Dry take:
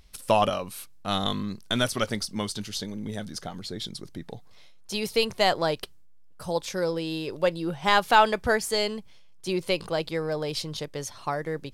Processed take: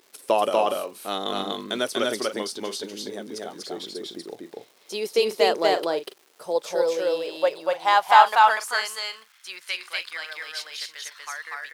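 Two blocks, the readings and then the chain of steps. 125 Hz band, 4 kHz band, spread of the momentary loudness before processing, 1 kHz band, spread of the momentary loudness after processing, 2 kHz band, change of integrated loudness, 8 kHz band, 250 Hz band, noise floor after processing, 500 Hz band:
below −10 dB, +0.5 dB, 14 LU, +5.5 dB, 17 LU, +3.0 dB, +3.0 dB, +0.5 dB, −4.0 dB, −58 dBFS, +3.0 dB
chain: loudspeakers that aren't time-aligned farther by 83 metres −1 dB, 97 metres −12 dB
surface crackle 500 per second −42 dBFS
high-pass filter sweep 370 Hz → 1,700 Hz, 0:06.21–0:09.79
level −2.5 dB

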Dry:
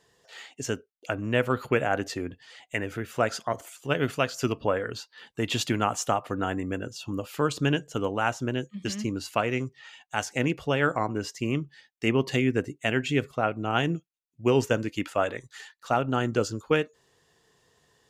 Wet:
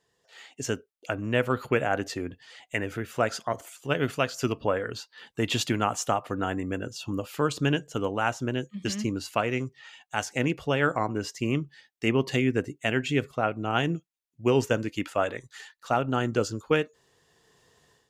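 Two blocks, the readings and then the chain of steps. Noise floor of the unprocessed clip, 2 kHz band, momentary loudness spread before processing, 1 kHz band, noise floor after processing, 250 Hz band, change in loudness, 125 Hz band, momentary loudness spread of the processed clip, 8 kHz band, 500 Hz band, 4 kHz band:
−74 dBFS, 0.0 dB, 10 LU, −0.5 dB, −75 dBFS, 0.0 dB, 0.0 dB, 0.0 dB, 9 LU, 0.0 dB, −0.5 dB, 0.0 dB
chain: automatic gain control gain up to 11.5 dB
level −8.5 dB

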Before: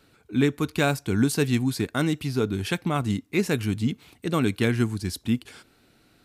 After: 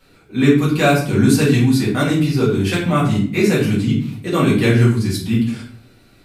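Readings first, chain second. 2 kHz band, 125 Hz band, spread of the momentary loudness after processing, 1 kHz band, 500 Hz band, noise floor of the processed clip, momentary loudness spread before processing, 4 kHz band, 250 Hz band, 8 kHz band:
+8.0 dB, +10.5 dB, 6 LU, +9.0 dB, +9.0 dB, −50 dBFS, 5 LU, +7.5 dB, +9.5 dB, +6.5 dB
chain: rectangular room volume 62 cubic metres, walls mixed, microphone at 1.9 metres
level −1 dB

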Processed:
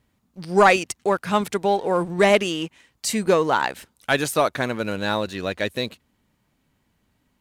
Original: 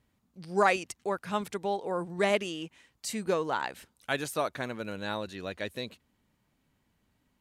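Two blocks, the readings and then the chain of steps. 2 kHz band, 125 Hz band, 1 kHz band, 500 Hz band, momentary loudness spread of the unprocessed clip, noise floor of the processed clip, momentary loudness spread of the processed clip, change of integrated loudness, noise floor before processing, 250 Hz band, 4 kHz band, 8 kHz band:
+10.0 dB, +10.5 dB, +10.0 dB, +10.5 dB, 14 LU, −69 dBFS, 12 LU, +10.0 dB, −75 dBFS, +10.5 dB, +10.5 dB, +10.5 dB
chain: leveller curve on the samples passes 1
level +7 dB

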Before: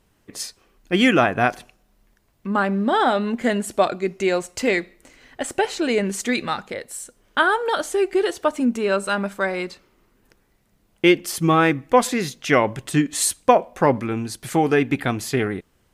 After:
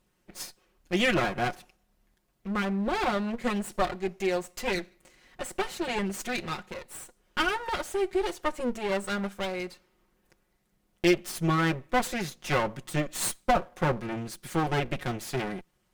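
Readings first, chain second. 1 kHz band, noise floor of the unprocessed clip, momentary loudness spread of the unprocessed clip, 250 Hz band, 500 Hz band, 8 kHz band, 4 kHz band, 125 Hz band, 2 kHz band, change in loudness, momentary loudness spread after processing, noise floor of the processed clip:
−8.5 dB, −64 dBFS, 11 LU, −9.0 dB, −9.5 dB, −9.5 dB, −6.5 dB, −5.5 dB, −8.0 dB, −8.5 dB, 15 LU, −72 dBFS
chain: lower of the sound and its delayed copy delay 5.5 ms
level −7 dB

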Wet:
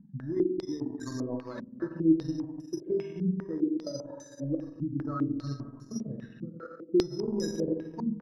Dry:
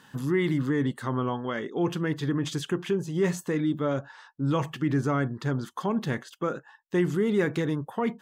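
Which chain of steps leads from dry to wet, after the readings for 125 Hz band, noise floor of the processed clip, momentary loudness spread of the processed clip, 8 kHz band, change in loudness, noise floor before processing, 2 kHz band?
−8.0 dB, −51 dBFS, 13 LU, −4.5 dB, −4.0 dB, −58 dBFS, −17.5 dB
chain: expanding power law on the bin magnitudes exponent 2.5
gate pattern "xx.xxxx.x" 66 BPM −24 dB
spring reverb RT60 1.8 s, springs 43/48 ms, chirp 40 ms, DRR 0 dB
upward compression, threshold −40 dBFS
bad sample-rate conversion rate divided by 8×, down filtered, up hold
transient designer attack +5 dB, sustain −10 dB
tuned comb filter 320 Hz, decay 0.26 s, harmonics all, mix 80%
single-tap delay 140 ms −12.5 dB
low-pass on a step sequencer 5 Hz 200–7,400 Hz

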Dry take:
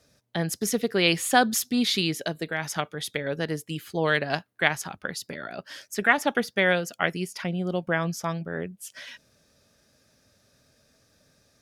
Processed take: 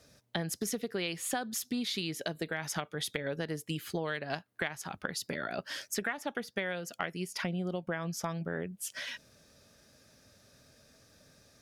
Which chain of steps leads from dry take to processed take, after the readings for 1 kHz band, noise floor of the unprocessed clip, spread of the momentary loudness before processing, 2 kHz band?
−11.5 dB, −65 dBFS, 13 LU, −11.0 dB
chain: downward compressor 12 to 1, threshold −33 dBFS, peak gain reduction 20 dB
level +2 dB

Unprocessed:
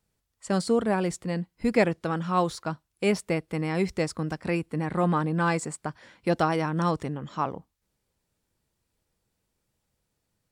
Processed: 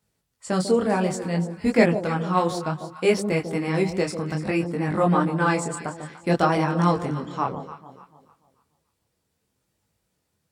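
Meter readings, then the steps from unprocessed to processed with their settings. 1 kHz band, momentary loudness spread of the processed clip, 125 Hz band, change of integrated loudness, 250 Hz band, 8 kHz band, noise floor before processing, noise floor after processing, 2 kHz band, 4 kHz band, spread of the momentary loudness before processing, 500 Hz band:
+4.0 dB, 9 LU, +4.0 dB, +4.0 dB, +4.0 dB, +3.5 dB, −79 dBFS, −76 dBFS, +4.0 dB, +3.5 dB, 9 LU, +4.5 dB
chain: high-pass filter 65 Hz
on a send: delay that swaps between a low-pass and a high-pass 146 ms, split 910 Hz, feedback 57%, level −8.5 dB
on the sum: micro pitch shift up and down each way 21 cents
level +7 dB

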